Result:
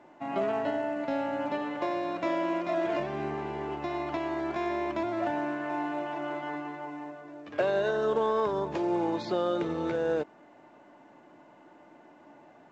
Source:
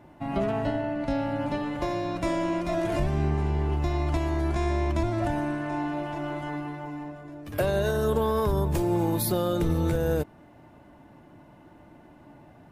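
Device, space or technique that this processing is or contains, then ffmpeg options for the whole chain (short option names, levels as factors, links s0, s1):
telephone: -af "highpass=330,lowpass=3300" -ar 16000 -c:a pcm_mulaw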